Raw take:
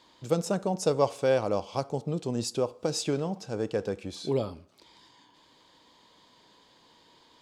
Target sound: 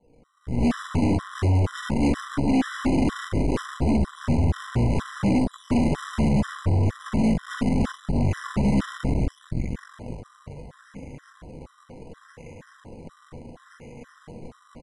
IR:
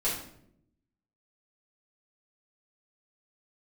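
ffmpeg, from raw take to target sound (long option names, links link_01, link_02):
-filter_complex "[1:a]atrim=start_sample=2205[link_01];[0:a][link_01]afir=irnorm=-1:irlink=0,acrusher=samples=9:mix=1:aa=0.000001:lfo=1:lforange=9:lforate=1.4,lowshelf=frequency=130:gain=7,acompressor=threshold=-30dB:ratio=2.5,highshelf=frequency=2800:gain=-10.5,asplit=2[link_02][link_03];[link_03]adelay=21,volume=-9dB[link_04];[link_02][link_04]amix=inputs=2:normalize=0,aecho=1:1:1095:0.0708,dynaudnorm=framelen=160:gausssize=3:maxgain=14.5dB,aeval=exprs='0.224*(cos(1*acos(clip(val(0)/0.224,-1,1)))-cos(1*PI/2))+0.0631*(cos(4*acos(clip(val(0)/0.224,-1,1)))-cos(4*PI/2))':channel_layout=same,asetrate=22050,aresample=44100,afftfilt=real='re*gt(sin(2*PI*2.1*pts/sr)*(1-2*mod(floor(b*sr/1024/1000),2)),0)':imag='im*gt(sin(2*PI*2.1*pts/sr)*(1-2*mod(floor(b*sr/1024/1000),2)),0)':win_size=1024:overlap=0.75,volume=-4dB"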